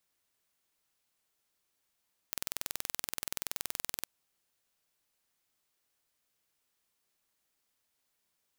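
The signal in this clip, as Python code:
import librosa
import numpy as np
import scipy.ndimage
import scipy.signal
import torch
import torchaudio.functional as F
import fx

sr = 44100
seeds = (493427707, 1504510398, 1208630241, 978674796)

y = 10.0 ** (-7.0 / 20.0) * (np.mod(np.arange(round(1.73 * sr)), round(sr / 21.1)) == 0)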